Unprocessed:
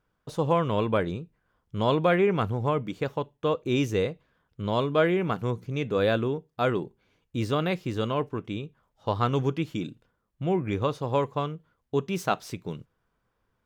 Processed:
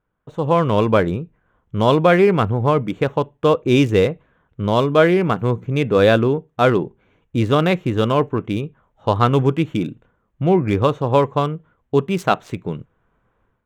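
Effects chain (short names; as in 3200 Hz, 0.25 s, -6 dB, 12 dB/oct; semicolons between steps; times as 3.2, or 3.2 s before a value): Wiener smoothing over 9 samples; AGC gain up to 11.5 dB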